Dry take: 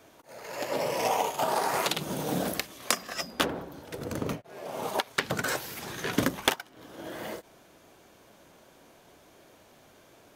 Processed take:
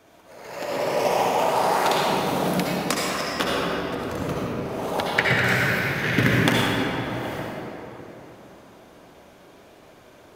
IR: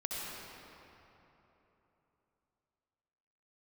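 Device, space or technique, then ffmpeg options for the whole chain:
swimming-pool hall: -filter_complex "[0:a]asettb=1/sr,asplit=3[a][b][c];[a]atrim=end=5.164[d];[b]atrim=start=5.16:end=6.32,asetpts=PTS-STARTPTS,afade=t=in:d=0.004:c=qsin,afade=t=out:st=1.156:d=0.004:c=qsin,equalizer=f=125:t=o:w=1:g=10,equalizer=f=1k:t=o:w=1:g=-6,equalizer=f=2k:t=o:w=1:g=11,equalizer=f=8k:t=o:w=1:g=-4[e];[c]atrim=start=6.316[f];[d][e]acrossfade=d=0.004:c1=hsin:c2=qsin[g];[g][f]acrossfade=d=0.004:c1=qsin:c2=hsin[h];[1:a]atrim=start_sample=2205[i];[h][i]afir=irnorm=-1:irlink=0,highshelf=f=5.1k:g=-4.5,volume=4dB"

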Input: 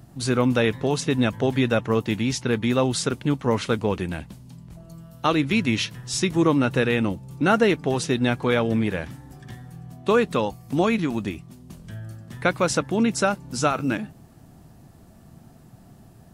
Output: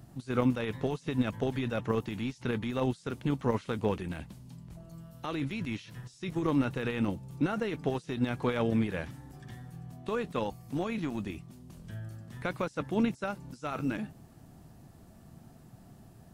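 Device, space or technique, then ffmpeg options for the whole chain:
de-esser from a sidechain: -filter_complex "[0:a]asplit=2[a][b];[b]highpass=f=5.8k:w=0.5412,highpass=f=5.8k:w=1.3066,apad=whole_len=720502[c];[a][c]sidechaincompress=threshold=-54dB:ratio=8:attack=0.58:release=22,volume=-4.5dB"

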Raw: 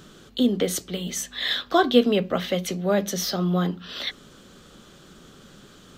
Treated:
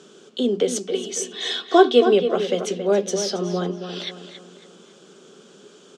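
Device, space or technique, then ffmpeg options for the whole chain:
television speaker: -filter_complex "[0:a]asettb=1/sr,asplit=3[a][b][c];[a]atrim=end=0.834[d];[b]atrim=start=0.83:end=2.09,asetpts=PTS-STARTPTS,afade=t=in:d=0.004:c=qsin,afade=t=out:st=1.256:d=0.004:c=qsin,aecho=1:1:2.7:0.71,atrim=end_sample=55566[e];[c]atrim=start=2.086[f];[d][e]acrossfade=d=0.004:c1=hsin:c2=qsin[g];[g][f]acrossfade=d=0.004:c1=qsin:c2=hsin,highpass=f=200:w=0.5412,highpass=f=200:w=1.3066,equalizer=f=280:t=q:w=4:g=-5,equalizer=f=410:t=q:w=4:g=9,equalizer=f=1.2k:t=q:w=4:g=-4,equalizer=f=1.9k:t=q:w=4:g=-8,equalizer=f=4.1k:t=q:w=4:g=-6,lowpass=f=8.5k:w=0.5412,lowpass=f=8.5k:w=1.3066,equalizer=f=6.8k:t=o:w=2.4:g=2.5,asplit=2[h][i];[i]adelay=275,lowpass=f=3.3k:p=1,volume=-8.5dB,asplit=2[j][k];[k]adelay=275,lowpass=f=3.3k:p=1,volume=0.41,asplit=2[l][m];[m]adelay=275,lowpass=f=3.3k:p=1,volume=0.41,asplit=2[n][o];[o]adelay=275,lowpass=f=3.3k:p=1,volume=0.41,asplit=2[p][q];[q]adelay=275,lowpass=f=3.3k:p=1,volume=0.41[r];[h][j][l][n][p][r]amix=inputs=6:normalize=0"

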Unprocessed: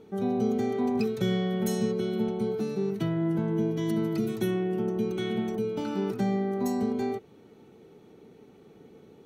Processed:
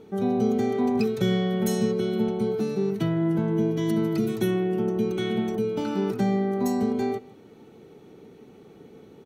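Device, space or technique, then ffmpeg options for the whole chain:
ducked delay: -filter_complex "[0:a]asplit=3[a][b][c];[b]adelay=155,volume=-8dB[d];[c]apad=whole_len=414932[e];[d][e]sidechaincompress=threshold=-46dB:ratio=8:attack=16:release=390[f];[a][f]amix=inputs=2:normalize=0,volume=3.5dB"

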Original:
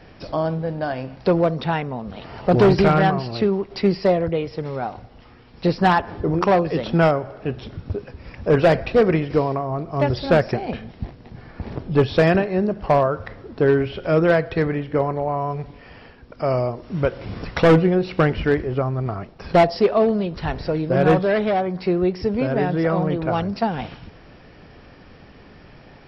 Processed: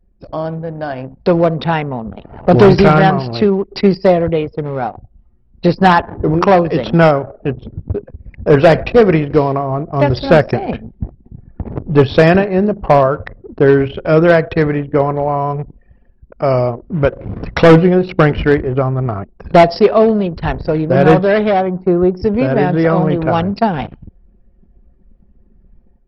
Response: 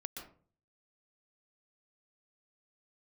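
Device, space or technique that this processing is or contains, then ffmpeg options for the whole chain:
voice memo with heavy noise removal: -filter_complex "[0:a]asplit=3[a][b][c];[a]afade=t=out:st=21.7:d=0.02[d];[b]highshelf=f=1.8k:t=q:w=1.5:g=-8,afade=t=in:st=21.7:d=0.02,afade=t=out:st=22.16:d=0.02[e];[c]afade=t=in:st=22.16:d=0.02[f];[d][e][f]amix=inputs=3:normalize=0,anlmdn=15.8,dynaudnorm=f=760:g=3:m=9dB,volume=1dB"

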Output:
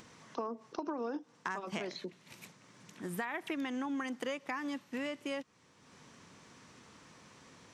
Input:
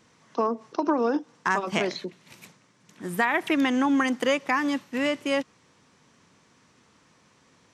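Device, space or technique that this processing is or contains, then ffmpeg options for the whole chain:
upward and downward compression: -af "acompressor=mode=upward:threshold=-44dB:ratio=2.5,acompressor=threshold=-33dB:ratio=3,volume=-4.5dB"

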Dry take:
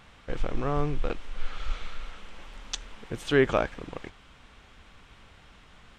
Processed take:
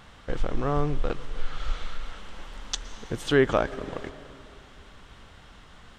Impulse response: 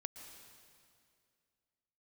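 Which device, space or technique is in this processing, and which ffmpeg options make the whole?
compressed reverb return: -filter_complex "[0:a]equalizer=f=2.4k:w=4.5:g=-6,asplit=2[a][b];[1:a]atrim=start_sample=2205[c];[b][c]afir=irnorm=-1:irlink=0,acompressor=threshold=-32dB:ratio=6,volume=-1dB[d];[a][d]amix=inputs=2:normalize=0"

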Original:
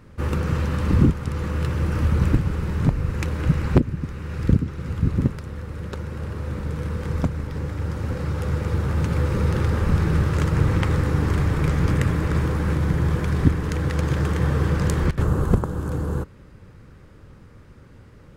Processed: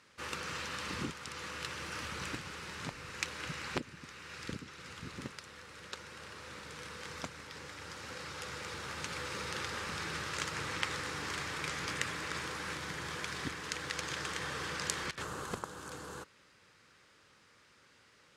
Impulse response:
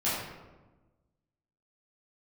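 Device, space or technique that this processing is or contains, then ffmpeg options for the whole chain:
piezo pickup straight into a mixer: -af "lowpass=5.3k,aderivative,volume=7.5dB"

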